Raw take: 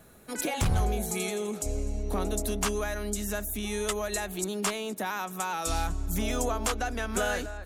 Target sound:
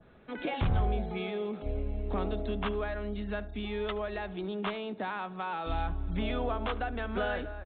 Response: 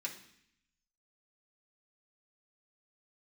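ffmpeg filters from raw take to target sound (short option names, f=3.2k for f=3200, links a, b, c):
-filter_complex "[0:a]asplit=2[a][b];[b]adelay=74,lowpass=f=1.6k:p=1,volume=-16dB,asplit=2[c][d];[d]adelay=74,lowpass=f=1.6k:p=1,volume=0.34,asplit=2[e][f];[f]adelay=74,lowpass=f=1.6k:p=1,volume=0.34[g];[a][c][e][g]amix=inputs=4:normalize=0,aresample=8000,aresample=44100,adynamicequalizer=threshold=0.00398:dfrequency=2500:dqfactor=0.86:tfrequency=2500:tqfactor=0.86:attack=5:release=100:ratio=0.375:range=2:mode=cutabove:tftype=bell,volume=-2dB"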